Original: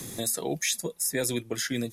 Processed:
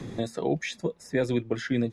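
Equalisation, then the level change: tape spacing loss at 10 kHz 32 dB; +5.5 dB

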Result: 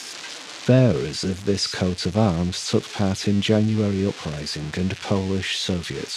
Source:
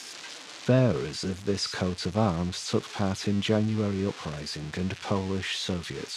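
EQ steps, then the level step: dynamic EQ 1100 Hz, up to -6 dB, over -45 dBFS, Q 1.4; +6.5 dB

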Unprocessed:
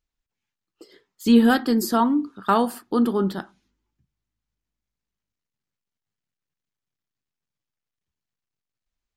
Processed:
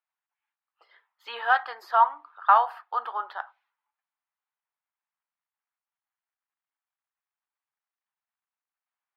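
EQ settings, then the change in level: steep high-pass 770 Hz 36 dB/oct; air absorption 310 m; bell 6100 Hz -13 dB 2.4 oct; +7.5 dB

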